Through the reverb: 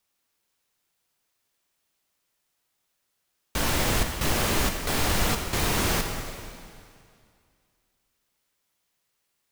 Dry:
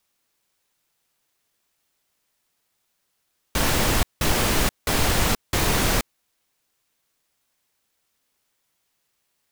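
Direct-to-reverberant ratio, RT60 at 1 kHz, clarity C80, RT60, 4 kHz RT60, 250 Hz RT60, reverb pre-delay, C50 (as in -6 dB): 4.0 dB, 2.3 s, 6.0 dB, 2.3 s, 2.2 s, 2.3 s, 7 ms, 5.0 dB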